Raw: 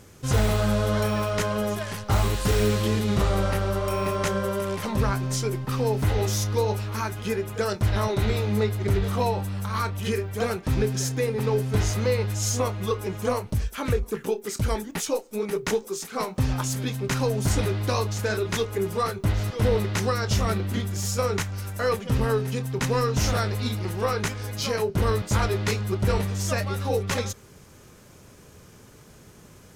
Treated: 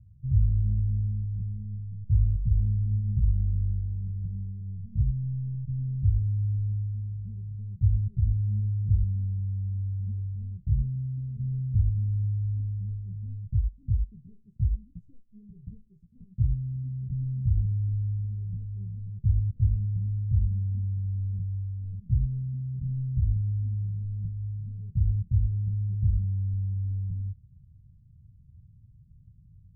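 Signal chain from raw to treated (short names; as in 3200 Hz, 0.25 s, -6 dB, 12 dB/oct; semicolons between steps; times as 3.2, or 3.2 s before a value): inverse Chebyshev low-pass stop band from 580 Hz, stop band 70 dB; gain +1.5 dB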